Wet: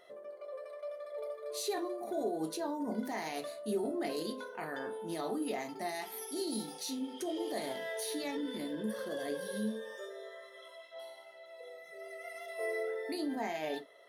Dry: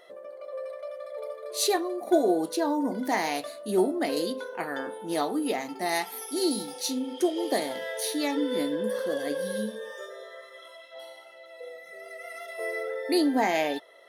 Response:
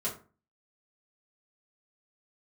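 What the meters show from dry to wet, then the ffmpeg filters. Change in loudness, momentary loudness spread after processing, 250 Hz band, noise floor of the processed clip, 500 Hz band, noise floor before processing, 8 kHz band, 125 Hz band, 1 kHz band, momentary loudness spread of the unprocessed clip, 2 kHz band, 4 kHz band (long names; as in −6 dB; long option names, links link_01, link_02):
−9.5 dB, 13 LU, −9.5 dB, −54 dBFS, −9.0 dB, −49 dBFS, −9.5 dB, −5.0 dB, −10.0 dB, 18 LU, −9.0 dB, −9.5 dB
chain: -filter_complex "[0:a]alimiter=limit=-23.5dB:level=0:latency=1:release=12,asplit=2[link_01][link_02];[1:a]atrim=start_sample=2205,atrim=end_sample=3087,lowshelf=frequency=130:gain=9.5[link_03];[link_02][link_03]afir=irnorm=-1:irlink=0,volume=-8.5dB[link_04];[link_01][link_04]amix=inputs=2:normalize=0,volume=-8dB"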